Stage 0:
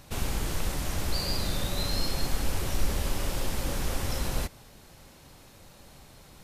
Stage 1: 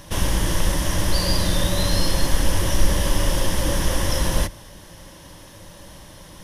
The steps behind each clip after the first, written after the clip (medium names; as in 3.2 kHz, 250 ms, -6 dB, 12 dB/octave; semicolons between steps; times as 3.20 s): rippled EQ curve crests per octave 1.2, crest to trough 8 dB; trim +8.5 dB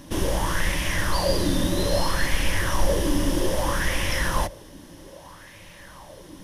sweeping bell 0.62 Hz 260–2400 Hz +15 dB; trim -5 dB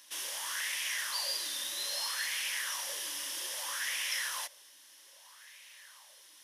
Bessel high-pass 2.6 kHz, order 2; trim -2.5 dB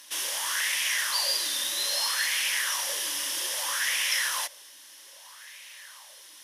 Chebyshev shaper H 3 -40 dB, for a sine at -21.5 dBFS; trim +8 dB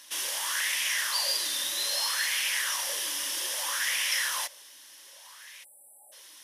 spectral selection erased 5.64–6.13 s, 880–7600 Hz; trim -1 dB; MP3 80 kbps 48 kHz